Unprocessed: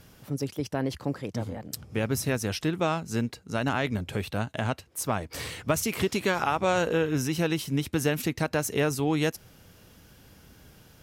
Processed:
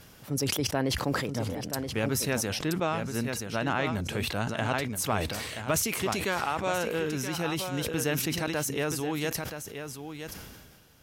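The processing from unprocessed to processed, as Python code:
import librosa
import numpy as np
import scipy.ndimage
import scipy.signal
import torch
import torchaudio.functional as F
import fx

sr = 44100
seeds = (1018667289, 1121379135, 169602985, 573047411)

p1 = fx.low_shelf(x, sr, hz=460.0, db=-4.5)
p2 = fx.rider(p1, sr, range_db=5, speed_s=2.0)
p3 = fx.high_shelf(p2, sr, hz=4800.0, db=-8.0, at=(2.59, 3.93))
p4 = p3 + fx.echo_single(p3, sr, ms=976, db=-9.0, dry=0)
p5 = fx.sustainer(p4, sr, db_per_s=35.0)
y = p5 * librosa.db_to_amplitude(-1.5)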